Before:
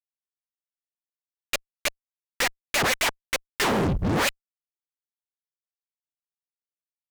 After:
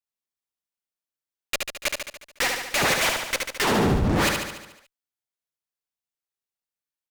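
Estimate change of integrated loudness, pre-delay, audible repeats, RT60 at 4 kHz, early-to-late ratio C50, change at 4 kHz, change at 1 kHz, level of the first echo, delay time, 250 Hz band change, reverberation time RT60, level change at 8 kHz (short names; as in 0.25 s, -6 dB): +2.0 dB, none, 7, none, none, +2.0 dB, +2.0 dB, -4.0 dB, 72 ms, +2.5 dB, none, +2.0 dB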